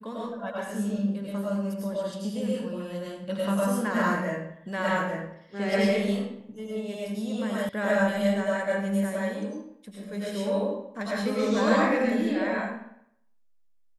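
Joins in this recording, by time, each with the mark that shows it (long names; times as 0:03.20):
0:07.69: cut off before it has died away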